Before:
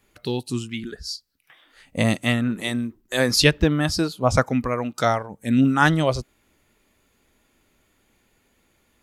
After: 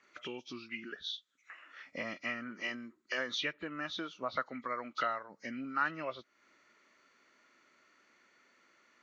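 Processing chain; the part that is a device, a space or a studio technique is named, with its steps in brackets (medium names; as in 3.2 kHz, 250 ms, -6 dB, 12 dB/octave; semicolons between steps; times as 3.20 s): hearing aid with frequency lowering (knee-point frequency compression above 1.9 kHz 1.5:1; compression 3:1, threshold -36 dBFS, peak gain reduction 18 dB; cabinet simulation 400–5900 Hz, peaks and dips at 450 Hz -6 dB, 790 Hz -8 dB, 1.3 kHz +7 dB, 2 kHz +4 dB, 3 kHz -4 dB, 5.1 kHz -6 dB)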